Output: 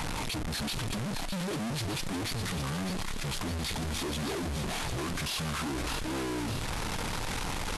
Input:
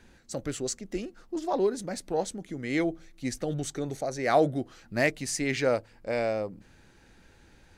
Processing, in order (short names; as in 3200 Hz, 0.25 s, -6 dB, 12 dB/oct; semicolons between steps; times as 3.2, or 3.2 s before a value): infinite clipping; pitch shift -10 st; thinning echo 0.608 s, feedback 69%, high-pass 970 Hz, level -7 dB; gain -2 dB